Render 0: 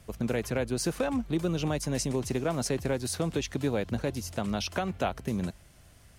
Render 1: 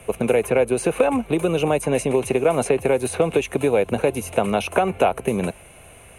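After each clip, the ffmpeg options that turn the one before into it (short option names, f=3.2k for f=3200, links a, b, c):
-filter_complex "[0:a]superequalizer=7b=1.78:12b=3.16:14b=0.316:16b=3.55,acrossover=split=90|1900|5600[a][b][c][d];[a]acompressor=threshold=-51dB:ratio=4[e];[b]acompressor=threshold=-28dB:ratio=4[f];[c]acompressor=threshold=-43dB:ratio=4[g];[d]acompressor=threshold=-40dB:ratio=4[h];[e][f][g][h]amix=inputs=4:normalize=0,equalizer=f=720:t=o:w=2.2:g=11.5,volume=5.5dB"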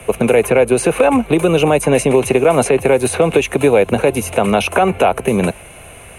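-filter_complex "[0:a]acrossover=split=130|2300[a][b][c];[b]crystalizer=i=3:c=0[d];[a][d][c]amix=inputs=3:normalize=0,alimiter=level_in=9dB:limit=-1dB:release=50:level=0:latency=1,volume=-1dB"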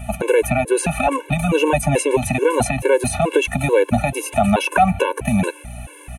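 -af "aeval=exprs='val(0)+0.0224*(sin(2*PI*60*n/s)+sin(2*PI*2*60*n/s)/2+sin(2*PI*3*60*n/s)/3+sin(2*PI*4*60*n/s)/4+sin(2*PI*5*60*n/s)/5)':c=same,aecho=1:1:1.2:0.32,afftfilt=real='re*gt(sin(2*PI*2.3*pts/sr)*(1-2*mod(floor(b*sr/1024/290),2)),0)':imag='im*gt(sin(2*PI*2.3*pts/sr)*(1-2*mod(floor(b*sr/1024/290),2)),0)':win_size=1024:overlap=0.75"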